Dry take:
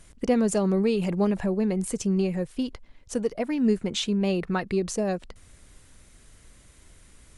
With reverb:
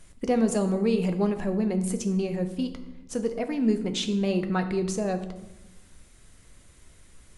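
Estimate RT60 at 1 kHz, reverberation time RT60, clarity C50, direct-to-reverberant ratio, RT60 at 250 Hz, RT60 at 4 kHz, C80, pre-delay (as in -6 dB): 0.95 s, 1.0 s, 11.0 dB, 6.5 dB, 1.6 s, 0.65 s, 13.0 dB, 5 ms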